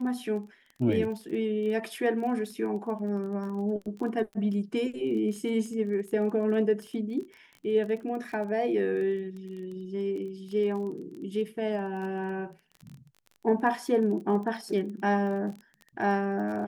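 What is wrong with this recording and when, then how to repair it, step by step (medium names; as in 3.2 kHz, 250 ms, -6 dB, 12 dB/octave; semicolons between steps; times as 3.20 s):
crackle 22 per s -37 dBFS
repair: de-click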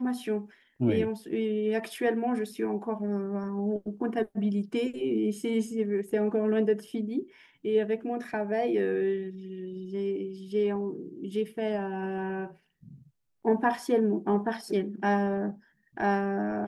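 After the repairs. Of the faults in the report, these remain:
nothing left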